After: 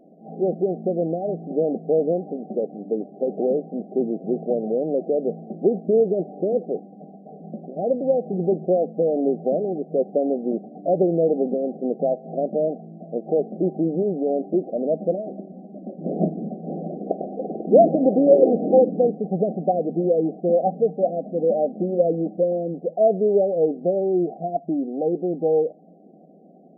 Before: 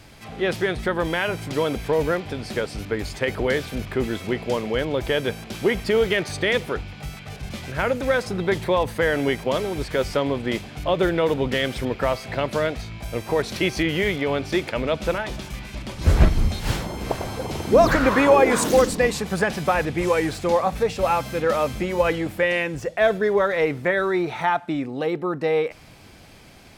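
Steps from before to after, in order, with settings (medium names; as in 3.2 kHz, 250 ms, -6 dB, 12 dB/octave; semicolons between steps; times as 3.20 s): FFT band-pass 160–790 Hz; trim +2 dB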